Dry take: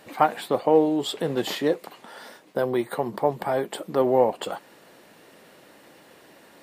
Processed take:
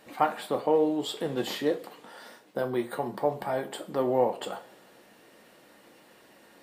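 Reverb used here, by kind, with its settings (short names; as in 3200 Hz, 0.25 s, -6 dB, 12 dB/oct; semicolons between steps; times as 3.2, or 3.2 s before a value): two-slope reverb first 0.29 s, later 1.5 s, from -21 dB, DRR 5.5 dB; gain -5.5 dB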